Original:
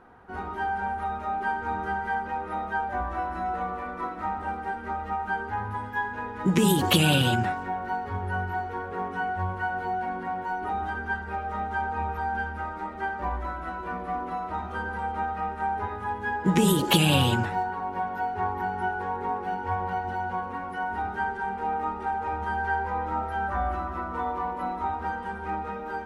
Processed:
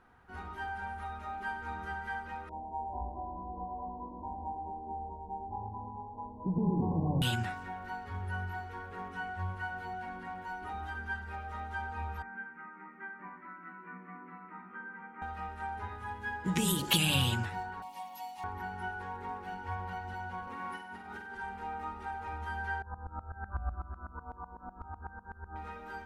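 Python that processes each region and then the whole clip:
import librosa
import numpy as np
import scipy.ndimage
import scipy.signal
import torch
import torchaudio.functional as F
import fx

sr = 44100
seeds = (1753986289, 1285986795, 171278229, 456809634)

y = fx.chain(x, sr, fx.self_delay(depth_ms=0.19),
    fx.brickwall_lowpass(high_hz=1100.0),
    fx.echo_heads(ms=110, heads='first and second', feedback_pct=44, wet_db=-6.5), at=(2.49, 7.22))
y = fx.chain(y, sr, fx.cheby1_bandpass(low_hz=170.0, high_hz=2200.0, order=4),
    fx.peak_eq(hz=650.0, db=-15.0, octaves=0.9), at=(12.22, 15.22))
y = fx.chain(y, sr, fx.tilt_eq(slope=4.5),
    fx.fixed_phaser(hz=410.0, stages=6), at=(17.82, 18.44))
y = fx.chain(y, sr, fx.highpass(hz=150.0, slope=12),
    fx.over_compress(threshold_db=-35.0, ratio=-1.0),
    fx.room_flutter(wall_m=8.2, rt60_s=0.57), at=(20.47, 21.35))
y = fx.chain(y, sr, fx.brickwall_lowpass(high_hz=1700.0),
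    fx.low_shelf(hz=89.0, db=11.5),
    fx.tremolo_decay(direction='swelling', hz=8.0, depth_db=21), at=(22.82, 25.56))
y = fx.peak_eq(y, sr, hz=480.0, db=-11.0, octaves=2.9)
y = fx.hum_notches(y, sr, base_hz=50, count=4)
y = y * librosa.db_to_amplitude(-2.5)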